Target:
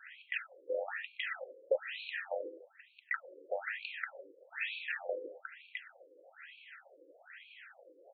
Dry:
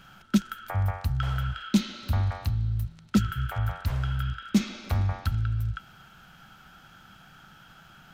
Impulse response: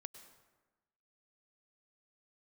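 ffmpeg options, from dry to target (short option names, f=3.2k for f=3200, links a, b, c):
-filter_complex "[0:a]asplit=3[a][b][c];[b]asetrate=35002,aresample=44100,atempo=1.25992,volume=-16dB[d];[c]asetrate=66075,aresample=44100,atempo=0.66742,volume=-6dB[e];[a][d][e]amix=inputs=3:normalize=0,asplit=3[f][g][h];[f]bandpass=f=530:t=q:w=8,volume=0dB[i];[g]bandpass=f=1.84k:t=q:w=8,volume=-6dB[j];[h]bandpass=f=2.48k:t=q:w=8,volume=-9dB[k];[i][j][k]amix=inputs=3:normalize=0,afftfilt=real='re*between(b*sr/1024,380*pow(3200/380,0.5+0.5*sin(2*PI*1.1*pts/sr))/1.41,380*pow(3200/380,0.5+0.5*sin(2*PI*1.1*pts/sr))*1.41)':imag='im*between(b*sr/1024,380*pow(3200/380,0.5+0.5*sin(2*PI*1.1*pts/sr))/1.41,380*pow(3200/380,0.5+0.5*sin(2*PI*1.1*pts/sr))*1.41)':win_size=1024:overlap=0.75,volume=17dB"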